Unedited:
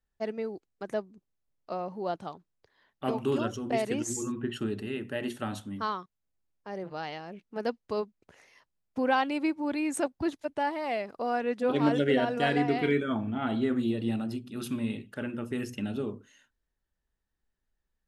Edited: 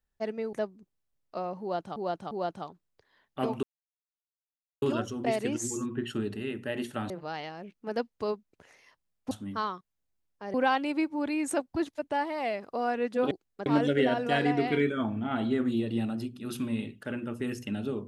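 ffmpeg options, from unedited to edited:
-filter_complex "[0:a]asplit=10[a][b][c][d][e][f][g][h][i][j];[a]atrim=end=0.532[k];[b]atrim=start=0.878:end=2.312[l];[c]atrim=start=1.958:end=2.312[m];[d]atrim=start=1.958:end=3.28,asetpts=PTS-STARTPTS,afade=t=out:st=1.318:d=0.004:c=hsin,apad=pad_dur=1.19[n];[e]atrim=start=3.28:end=5.562,asetpts=PTS-STARTPTS,afade=t=in:d=0.004:c=hsin[o];[f]atrim=start=6.788:end=9.002[p];[g]atrim=start=5.558:end=6.792[q];[h]atrim=start=8.998:end=11.772[r];[i]atrim=start=0.528:end=0.882[s];[j]atrim=start=11.768[t];[k][l]acrossfade=d=0.004:c1=hsin:c2=hsin[u];[u][m]acrossfade=d=0.004:c1=hsin:c2=hsin[v];[n][o]concat=n=2:v=0:a=1[w];[v][w]acrossfade=d=0.004:c1=hsin:c2=hsin[x];[x][p]acrossfade=d=0.004:c1=hsin:c2=hsin[y];[y][q]acrossfade=d=0.004:c1=hsin:c2=hsin[z];[z][r]acrossfade=d=0.004:c1=hsin:c2=hsin[aa];[aa][s]acrossfade=d=0.004:c1=hsin:c2=hsin[ab];[ab][t]acrossfade=d=0.004:c1=hsin:c2=hsin"

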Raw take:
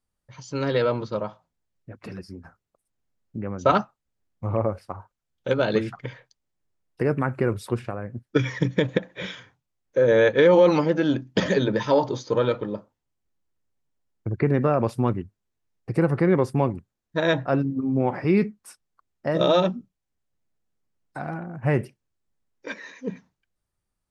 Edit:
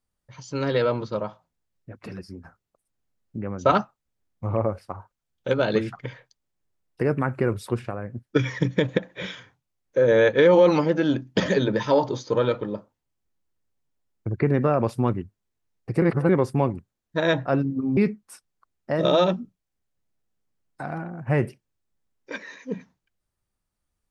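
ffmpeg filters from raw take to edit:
-filter_complex "[0:a]asplit=4[a][b][c][d];[a]atrim=end=16.022[e];[b]atrim=start=16.018:end=16.292,asetpts=PTS-STARTPTS,areverse[f];[c]atrim=start=16.288:end=17.972[g];[d]atrim=start=18.328[h];[e][f]acrossfade=d=0.004:c1=hsin:c2=hsin[i];[i][g]acrossfade=d=0.004:c1=hsin:c2=hsin[j];[j][h]acrossfade=d=0.004:c1=hsin:c2=hsin"

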